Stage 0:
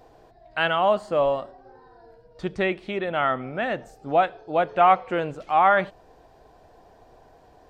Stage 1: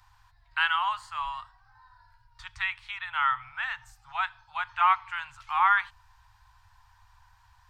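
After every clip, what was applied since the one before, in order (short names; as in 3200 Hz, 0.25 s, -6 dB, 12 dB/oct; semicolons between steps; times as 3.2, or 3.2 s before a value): Chebyshev band-stop 110–910 Hz, order 5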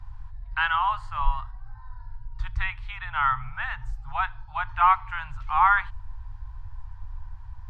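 tilt -4.5 dB/oct; gain +4 dB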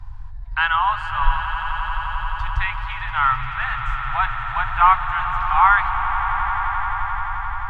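swelling echo 87 ms, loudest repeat 8, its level -14 dB; gain +5 dB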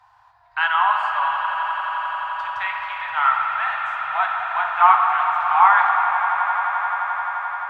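resonant high-pass 500 Hz, resonance Q 4.3; shoebox room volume 200 m³, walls hard, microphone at 0.44 m; gain -3 dB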